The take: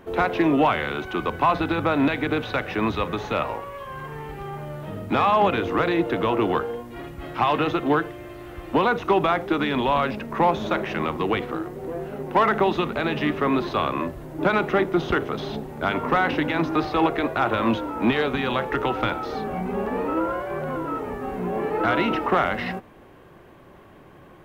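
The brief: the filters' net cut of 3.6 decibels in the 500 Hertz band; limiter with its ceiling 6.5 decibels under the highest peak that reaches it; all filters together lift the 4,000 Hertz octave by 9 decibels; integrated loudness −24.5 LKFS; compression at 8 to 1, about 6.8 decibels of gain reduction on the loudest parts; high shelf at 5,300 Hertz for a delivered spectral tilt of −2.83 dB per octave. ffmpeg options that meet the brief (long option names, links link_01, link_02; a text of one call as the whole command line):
ffmpeg -i in.wav -af "equalizer=frequency=500:width_type=o:gain=-5,equalizer=frequency=4000:width_type=o:gain=9,highshelf=frequency=5300:gain=7,acompressor=threshold=-23dB:ratio=8,volume=5dB,alimiter=limit=-13dB:level=0:latency=1" out.wav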